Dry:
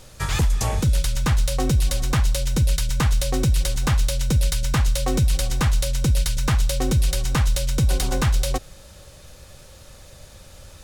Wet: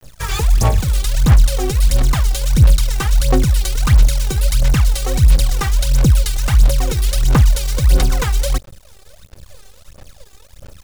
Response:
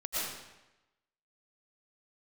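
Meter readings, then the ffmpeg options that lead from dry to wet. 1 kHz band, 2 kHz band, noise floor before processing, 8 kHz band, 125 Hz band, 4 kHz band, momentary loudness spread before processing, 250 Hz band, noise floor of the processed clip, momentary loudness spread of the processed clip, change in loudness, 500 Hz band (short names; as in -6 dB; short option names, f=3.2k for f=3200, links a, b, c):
+4.0 dB, +3.5 dB, -46 dBFS, +3.5 dB, +6.0 dB, +3.5 dB, 1 LU, +3.5 dB, -44 dBFS, 5 LU, +6.5 dB, +4.0 dB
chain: -af "acrusher=bits=6:dc=4:mix=0:aa=0.000001,aphaser=in_gain=1:out_gain=1:delay=2.6:decay=0.7:speed=1.5:type=sinusoidal"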